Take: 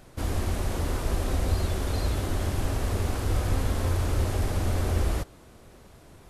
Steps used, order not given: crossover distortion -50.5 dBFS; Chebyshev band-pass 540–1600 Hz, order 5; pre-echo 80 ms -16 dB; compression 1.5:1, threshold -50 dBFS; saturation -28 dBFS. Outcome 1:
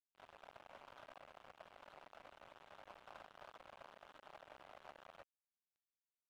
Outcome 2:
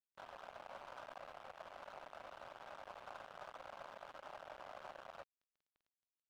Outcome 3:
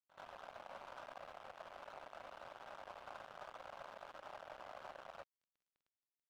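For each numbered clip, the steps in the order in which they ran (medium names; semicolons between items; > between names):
pre-echo > saturation > compression > Chebyshev band-pass > crossover distortion; saturation > Chebyshev band-pass > compression > pre-echo > crossover distortion; saturation > Chebyshev band-pass > compression > crossover distortion > pre-echo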